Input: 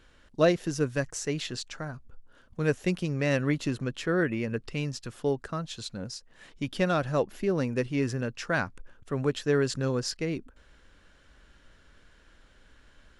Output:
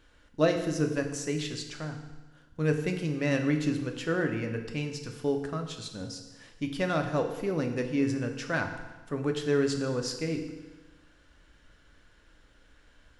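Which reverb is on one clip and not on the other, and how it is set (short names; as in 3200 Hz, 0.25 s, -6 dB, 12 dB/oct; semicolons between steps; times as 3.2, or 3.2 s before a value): FDN reverb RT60 1.2 s, low-frequency decay 1×, high-frequency decay 0.95×, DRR 4 dB; gain -3 dB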